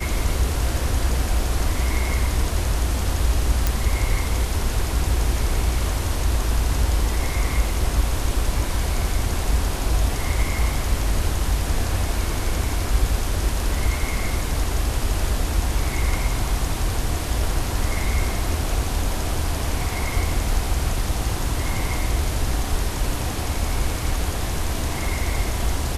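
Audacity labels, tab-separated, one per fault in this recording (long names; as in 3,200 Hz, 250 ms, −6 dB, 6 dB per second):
3.670000	3.670000	click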